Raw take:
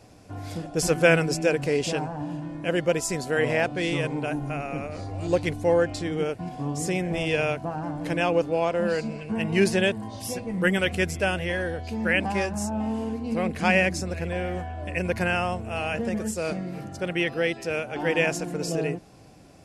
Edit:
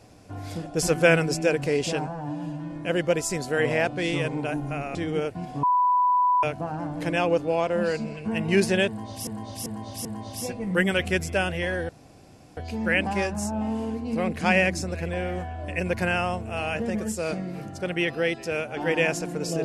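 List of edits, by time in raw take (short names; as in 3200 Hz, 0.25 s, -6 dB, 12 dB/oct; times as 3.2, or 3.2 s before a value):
2.07–2.49 stretch 1.5×
4.74–5.99 cut
6.67–7.47 bleep 992 Hz -17.5 dBFS
9.92–10.31 loop, 4 plays
11.76 insert room tone 0.68 s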